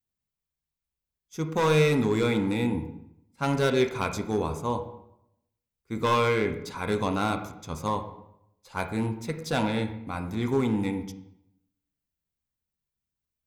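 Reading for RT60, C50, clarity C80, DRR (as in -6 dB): 0.80 s, 9.5 dB, 12.5 dB, 5.5 dB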